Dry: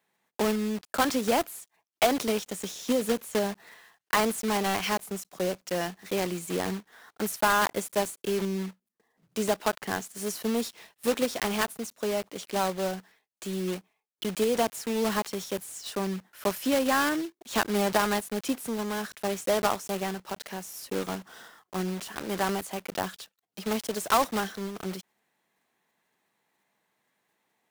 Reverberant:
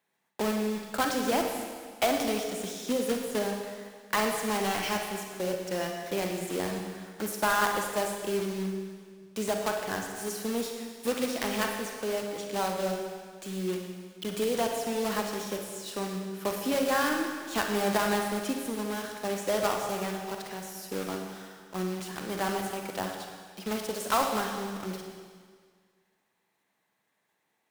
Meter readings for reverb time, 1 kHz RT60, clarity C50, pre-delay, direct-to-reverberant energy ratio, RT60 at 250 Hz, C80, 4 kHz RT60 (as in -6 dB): 1.8 s, 1.8 s, 3.5 dB, 39 ms, 2.0 dB, 1.8 s, 5.0 dB, 1.8 s